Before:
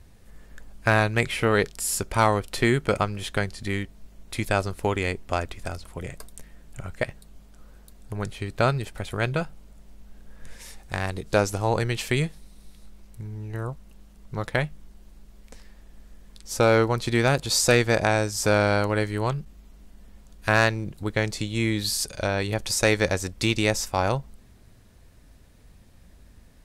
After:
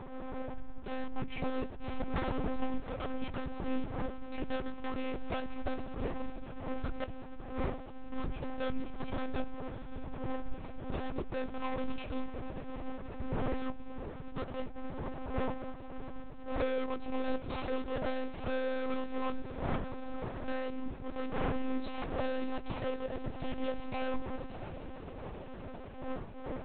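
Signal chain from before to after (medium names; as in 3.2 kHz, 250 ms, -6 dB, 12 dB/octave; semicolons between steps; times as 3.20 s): median filter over 25 samples; wind noise 550 Hz -39 dBFS; 0.88–2.93 s: bass shelf 280 Hz +9 dB; compression 12:1, threshold -28 dBFS, peak gain reduction 17 dB; wavefolder -28 dBFS; flange 1.3 Hz, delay 4 ms, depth 3.5 ms, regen +30%; echo that smears into a reverb 653 ms, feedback 74%, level -14 dB; monotone LPC vocoder at 8 kHz 260 Hz; attacks held to a fixed rise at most 100 dB/s; trim +6 dB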